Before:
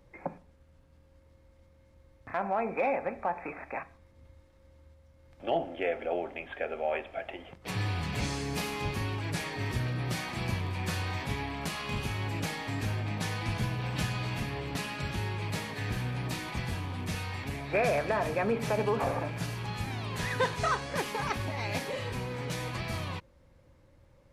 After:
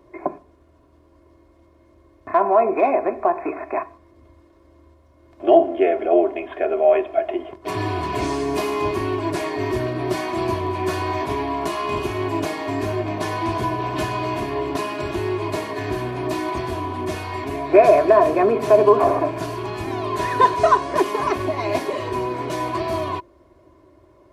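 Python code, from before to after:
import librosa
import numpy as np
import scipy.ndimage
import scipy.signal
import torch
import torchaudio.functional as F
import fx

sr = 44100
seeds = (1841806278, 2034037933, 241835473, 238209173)

y = scipy.signal.sosfilt(scipy.signal.butter(2, 51.0, 'highpass', fs=sr, output='sos'), x)
y = y + 0.52 * np.pad(y, (int(2.8 * sr / 1000.0), 0))[:len(y)]
y = fx.small_body(y, sr, hz=(370.0, 620.0, 990.0), ring_ms=35, db=17)
y = y * librosa.db_to_amplitude(2.0)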